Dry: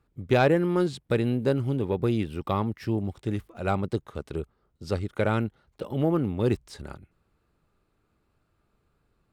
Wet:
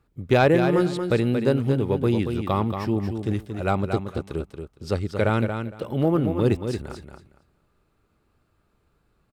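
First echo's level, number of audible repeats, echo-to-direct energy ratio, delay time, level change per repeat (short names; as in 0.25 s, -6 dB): -7.0 dB, 2, -7.0 dB, 0.23 s, -14.5 dB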